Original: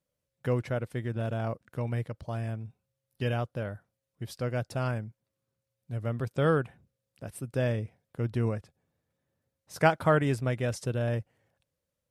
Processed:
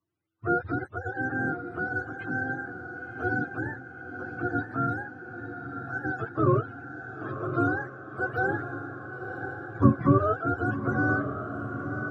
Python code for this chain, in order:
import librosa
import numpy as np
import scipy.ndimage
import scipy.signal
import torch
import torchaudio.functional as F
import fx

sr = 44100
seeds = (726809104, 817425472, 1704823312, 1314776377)

y = fx.octave_mirror(x, sr, pivot_hz=420.0)
y = fx.echo_diffused(y, sr, ms=1017, feedback_pct=59, wet_db=-8)
y = fx.end_taper(y, sr, db_per_s=580.0)
y = F.gain(torch.from_numpy(y), 3.0).numpy()